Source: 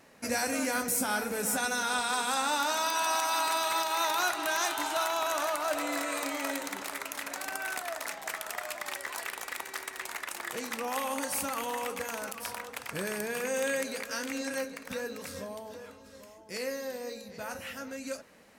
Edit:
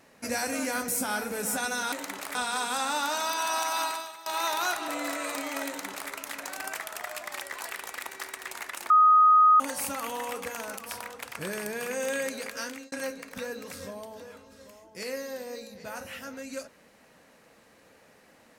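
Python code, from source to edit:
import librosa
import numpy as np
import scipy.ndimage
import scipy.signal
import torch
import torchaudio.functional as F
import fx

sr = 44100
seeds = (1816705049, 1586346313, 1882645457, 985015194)

y = fx.edit(x, sr, fx.fade_out_to(start_s=3.41, length_s=0.42, curve='qua', floor_db=-19.0),
    fx.cut(start_s=4.45, length_s=1.31),
    fx.duplicate(start_s=6.55, length_s=0.43, to_s=1.92),
    fx.cut(start_s=7.61, length_s=0.66),
    fx.bleep(start_s=10.44, length_s=0.7, hz=1250.0, db=-14.5),
    fx.fade_out_span(start_s=14.17, length_s=0.29), tone=tone)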